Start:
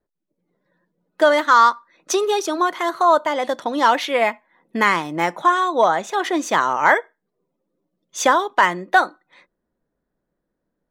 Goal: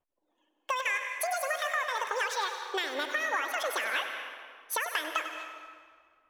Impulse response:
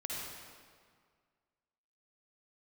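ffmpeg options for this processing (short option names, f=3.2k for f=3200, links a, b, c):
-filter_complex "[0:a]acompressor=threshold=-23dB:ratio=4,asetrate=76440,aresample=44100,asplit=2[a][b];[1:a]atrim=start_sample=2205,adelay=97[c];[b][c]afir=irnorm=-1:irlink=0,volume=-7dB[d];[a][d]amix=inputs=2:normalize=0,volume=-6.5dB"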